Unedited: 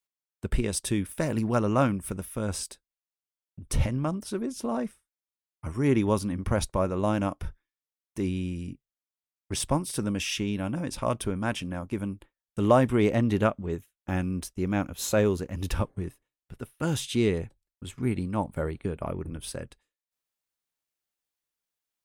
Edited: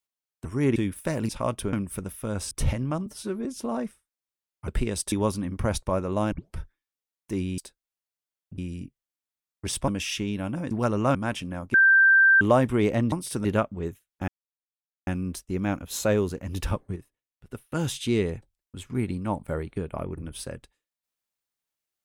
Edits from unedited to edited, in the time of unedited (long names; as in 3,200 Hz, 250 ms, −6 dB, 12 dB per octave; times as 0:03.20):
0:00.45–0:00.89: swap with 0:05.68–0:05.99
0:01.42–0:01.86: swap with 0:10.91–0:11.35
0:02.64–0:03.64: move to 0:08.45
0:04.19–0:04.45: time-stretch 1.5×
0:07.19: tape start 0.25 s
0:09.75–0:10.08: move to 0:13.32
0:11.94–0:12.61: beep over 1,570 Hz −13.5 dBFS
0:14.15: splice in silence 0.79 s
0:16.04–0:16.58: clip gain −7.5 dB